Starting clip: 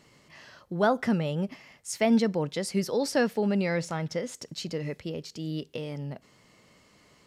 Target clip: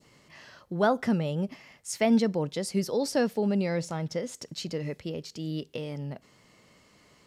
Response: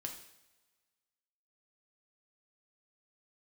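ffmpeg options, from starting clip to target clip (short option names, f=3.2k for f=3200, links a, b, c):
-af "adynamicequalizer=threshold=0.00562:dfrequency=1800:dqfactor=0.81:tfrequency=1800:tqfactor=0.81:attack=5:release=100:ratio=0.375:range=3:mode=cutabove:tftype=bell"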